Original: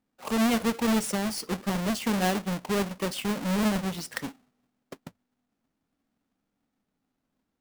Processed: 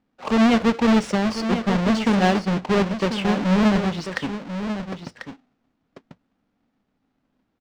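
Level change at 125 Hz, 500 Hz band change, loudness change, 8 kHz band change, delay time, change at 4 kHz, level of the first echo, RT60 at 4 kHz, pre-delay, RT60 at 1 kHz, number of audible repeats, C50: +8.5 dB, +8.0 dB, +7.0 dB, −4.0 dB, 1,042 ms, +4.5 dB, −9.5 dB, no reverb audible, no reverb audible, no reverb audible, 1, no reverb audible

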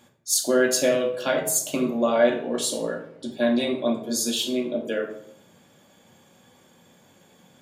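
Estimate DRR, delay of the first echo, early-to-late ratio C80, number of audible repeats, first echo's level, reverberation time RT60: 2.0 dB, no echo audible, 11.0 dB, no echo audible, no echo audible, 0.70 s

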